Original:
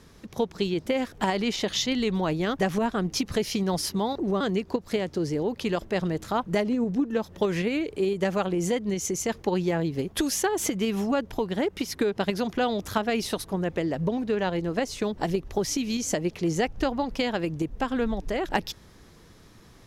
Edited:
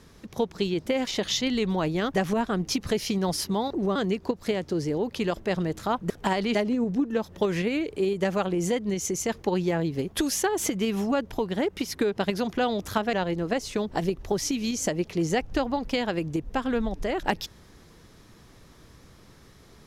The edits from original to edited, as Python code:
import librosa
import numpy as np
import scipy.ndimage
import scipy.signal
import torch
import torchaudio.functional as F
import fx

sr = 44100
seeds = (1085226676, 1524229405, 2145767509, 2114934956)

y = fx.edit(x, sr, fx.move(start_s=1.07, length_s=0.45, to_s=6.55),
    fx.cut(start_s=13.13, length_s=1.26), tone=tone)